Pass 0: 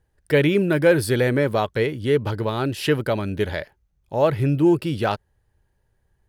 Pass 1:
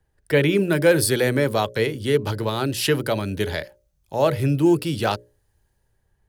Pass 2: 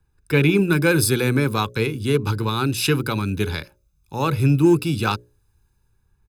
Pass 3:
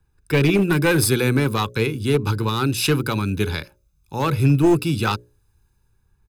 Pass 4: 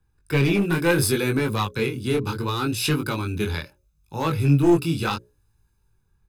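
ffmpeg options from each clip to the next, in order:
-filter_complex "[0:a]bandreject=f=60:t=h:w=6,bandreject=f=120:t=h:w=6,bandreject=f=180:t=h:w=6,bandreject=f=240:t=h:w=6,bandreject=f=300:t=h:w=6,bandreject=f=360:t=h:w=6,bandreject=f=420:t=h:w=6,bandreject=f=480:t=h:w=6,bandreject=f=540:t=h:w=6,bandreject=f=600:t=h:w=6,acrossover=split=150|420|4100[s0][s1][s2][s3];[s3]dynaudnorm=f=110:g=11:m=2.82[s4];[s0][s1][s2][s4]amix=inputs=4:normalize=0"
-af "aecho=1:1:0.8:0.83,aeval=exprs='0.668*(cos(1*acos(clip(val(0)/0.668,-1,1)))-cos(1*PI/2))+0.0106*(cos(7*acos(clip(val(0)/0.668,-1,1)))-cos(7*PI/2))':c=same"
-af "aeval=exprs='clip(val(0),-1,0.188)':c=same,volume=1.12"
-af "flanger=delay=18.5:depth=5.9:speed=0.71"

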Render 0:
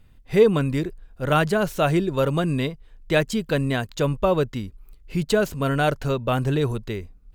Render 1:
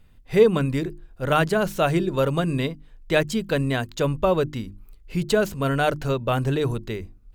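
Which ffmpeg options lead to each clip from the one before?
-af "bandreject=f=50:t=h:w=6,bandreject=f=100:t=h:w=6,bandreject=f=150:t=h:w=6,bandreject=f=200:t=h:w=6,bandreject=f=250:t=h:w=6,bandreject=f=300:t=h:w=6,bandreject=f=350:t=h:w=6"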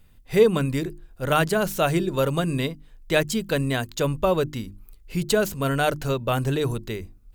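-af "highshelf=f=6000:g=9.5,volume=0.891"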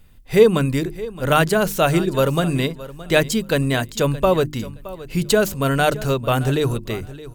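-af "aecho=1:1:619|1238:0.141|0.024,volume=1.68"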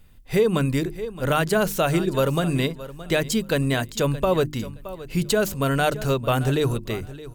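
-af "alimiter=limit=0.376:level=0:latency=1:release=126,volume=0.794"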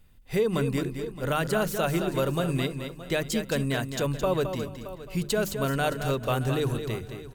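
-af "aecho=1:1:217|434|651:0.398|0.0916|0.0211,volume=0.531"

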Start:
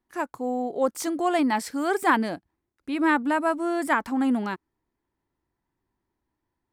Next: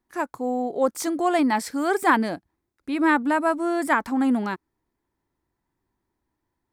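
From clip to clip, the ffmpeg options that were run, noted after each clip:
-af "equalizer=f=2900:w=5.6:g=-3.5,volume=1.26"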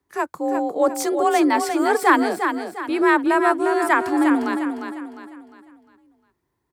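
-filter_complex "[0:a]afreqshift=39,asplit=2[s0][s1];[s1]aecho=0:1:353|706|1059|1412|1765:0.447|0.174|0.0679|0.0265|0.0103[s2];[s0][s2]amix=inputs=2:normalize=0,volume=1.41"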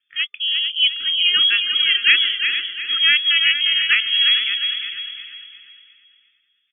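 -filter_complex "[0:a]lowpass=f=3100:t=q:w=0.5098,lowpass=f=3100:t=q:w=0.6013,lowpass=f=3100:t=q:w=0.9,lowpass=f=3100:t=q:w=2.563,afreqshift=-3600,asplit=2[s0][s1];[s1]adelay=446,lowpass=f=2800:p=1,volume=0.335,asplit=2[s2][s3];[s3]adelay=446,lowpass=f=2800:p=1,volume=0.27,asplit=2[s4][s5];[s5]adelay=446,lowpass=f=2800:p=1,volume=0.27[s6];[s0][s2][s4][s6]amix=inputs=4:normalize=0,afftfilt=real='re*(1-between(b*sr/4096,420,1200))':imag='im*(1-between(b*sr/4096,420,1200))':win_size=4096:overlap=0.75,volume=1.12"

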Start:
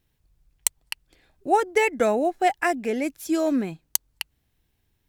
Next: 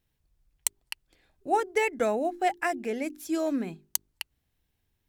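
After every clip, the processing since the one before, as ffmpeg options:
-af "bandreject=f=50:t=h:w=6,bandreject=f=100:t=h:w=6,bandreject=f=150:t=h:w=6,bandreject=f=200:t=h:w=6,bandreject=f=250:t=h:w=6,bandreject=f=300:t=h:w=6,bandreject=f=350:t=h:w=6,bandreject=f=400:t=h:w=6,volume=0.562"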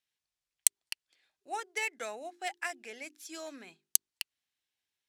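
-af "adynamicsmooth=sensitivity=1.5:basefreq=4900,aderivative,volume=2.24"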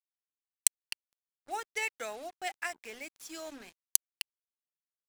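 -af "acrusher=bits=7:mix=0:aa=0.5"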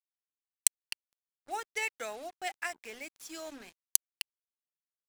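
-af anull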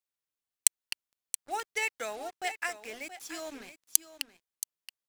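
-af "aecho=1:1:675:0.224,volume=1.33"

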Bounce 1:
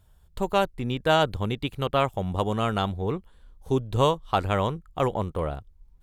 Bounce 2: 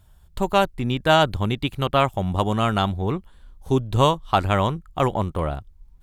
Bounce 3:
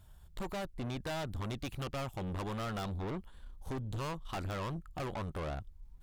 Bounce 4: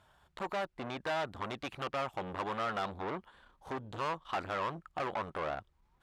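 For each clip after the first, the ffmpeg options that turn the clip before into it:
-af "equalizer=f=470:w=4.2:g=-6.5,volume=1.78"
-af "acompressor=threshold=0.1:ratio=6,aeval=exprs='(tanh(44.7*val(0)+0.35)-tanh(0.35))/44.7':c=same,volume=0.75"
-af "bandpass=f=1200:t=q:w=0.64:csg=0,volume=2.24"

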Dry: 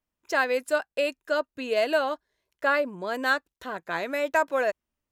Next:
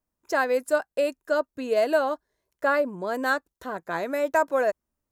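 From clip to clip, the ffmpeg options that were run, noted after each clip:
-af "equalizer=f=2900:t=o:w=1.5:g=-10,volume=1.41"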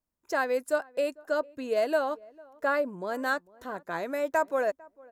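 -filter_complex "[0:a]asplit=2[s0][s1];[s1]adelay=450,lowpass=f=1100:p=1,volume=0.0708,asplit=2[s2][s3];[s3]adelay=450,lowpass=f=1100:p=1,volume=0.16[s4];[s0][s2][s4]amix=inputs=3:normalize=0,volume=0.631"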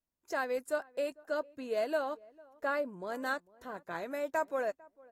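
-af "volume=0.501" -ar 44100 -c:a aac -b:a 48k

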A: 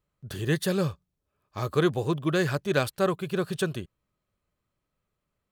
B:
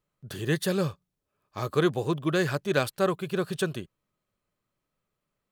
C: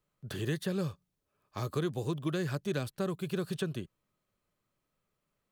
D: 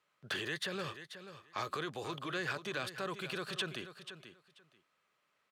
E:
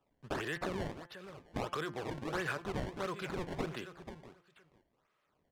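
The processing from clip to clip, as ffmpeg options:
-af "equalizer=f=61:t=o:w=1:g=-12"
-filter_complex "[0:a]acrossover=split=320|3700[s0][s1][s2];[s0]acompressor=threshold=0.0251:ratio=4[s3];[s1]acompressor=threshold=0.0112:ratio=4[s4];[s2]acompressor=threshold=0.00355:ratio=4[s5];[s3][s4][s5]amix=inputs=3:normalize=0"
-af "alimiter=level_in=2.11:limit=0.0631:level=0:latency=1:release=19,volume=0.473,bandpass=f=2000:t=q:w=0.75:csg=0,aecho=1:1:486|972:0.266|0.0452,volume=3.35"
-af "acrusher=samples=20:mix=1:aa=0.000001:lfo=1:lforange=32:lforate=1.5,aemphasis=mode=reproduction:type=50fm,bandreject=f=173.6:t=h:w=4,bandreject=f=347.2:t=h:w=4,bandreject=f=520.8:t=h:w=4,bandreject=f=694.4:t=h:w=4,bandreject=f=868:t=h:w=4,bandreject=f=1041.6:t=h:w=4,bandreject=f=1215.2:t=h:w=4,bandreject=f=1388.8:t=h:w=4,bandreject=f=1562.4:t=h:w=4,bandreject=f=1736:t=h:w=4,bandreject=f=1909.6:t=h:w=4,bandreject=f=2083.2:t=h:w=4,bandreject=f=2256.8:t=h:w=4,bandreject=f=2430.4:t=h:w=4,bandreject=f=2604:t=h:w=4,bandreject=f=2777.6:t=h:w=4,bandreject=f=2951.2:t=h:w=4,bandreject=f=3124.8:t=h:w=4,bandreject=f=3298.4:t=h:w=4,volume=1.19"

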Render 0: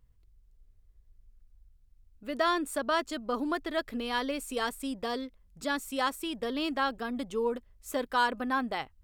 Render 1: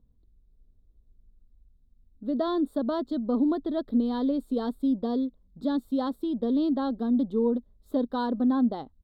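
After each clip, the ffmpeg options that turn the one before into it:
-af "firequalizer=gain_entry='entry(120,0);entry(230,13);entry(360,5);entry(2500,-29);entry(3700,-1);entry(6000,-26);entry(14000,-16)':delay=0.05:min_phase=1"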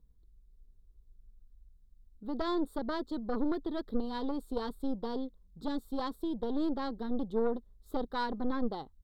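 -af "aeval=exprs='0.178*(cos(1*acos(clip(val(0)/0.178,-1,1)))-cos(1*PI/2))+0.0631*(cos(2*acos(clip(val(0)/0.178,-1,1)))-cos(2*PI/2))+0.00631*(cos(5*acos(clip(val(0)/0.178,-1,1)))-cos(5*PI/2))':c=same,equalizer=f=100:t=o:w=0.67:g=-9,equalizer=f=250:t=o:w=0.67:g=-11,equalizer=f=630:t=o:w=0.67:g=-9,equalizer=f=2500:t=o:w=0.67:g=-7"

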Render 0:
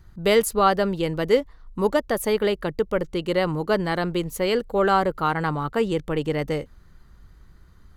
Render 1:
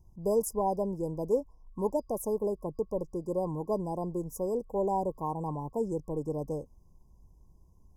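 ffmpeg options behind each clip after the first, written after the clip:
-af "afftfilt=real='re*(1-between(b*sr/4096,1100,4900))':imag='im*(1-between(b*sr/4096,1100,4900))':win_size=4096:overlap=0.75,volume=0.376"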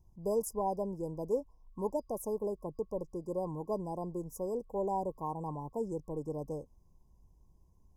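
-af "equalizer=f=2100:t=o:w=2.7:g=2.5,volume=0.562"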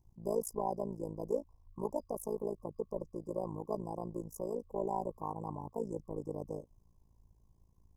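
-af "tremolo=f=55:d=0.919,volume=1.19"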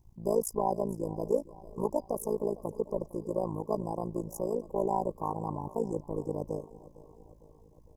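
-af "aecho=1:1:456|912|1368|1824|2280:0.112|0.064|0.0365|0.0208|0.0118,volume=2"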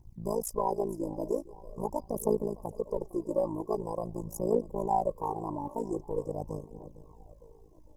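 -af "aphaser=in_gain=1:out_gain=1:delay=3.6:decay=0.57:speed=0.44:type=triangular,volume=0.891"

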